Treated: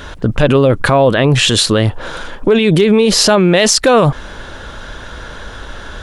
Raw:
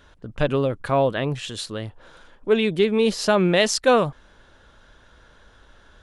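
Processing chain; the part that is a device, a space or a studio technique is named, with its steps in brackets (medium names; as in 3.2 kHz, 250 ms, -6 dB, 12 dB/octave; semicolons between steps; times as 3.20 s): loud club master (compression 3:1, threshold -21 dBFS, peak gain reduction 7 dB; hard clipper -13.5 dBFS, distortion -32 dB; loudness maximiser +24 dB); trim -1 dB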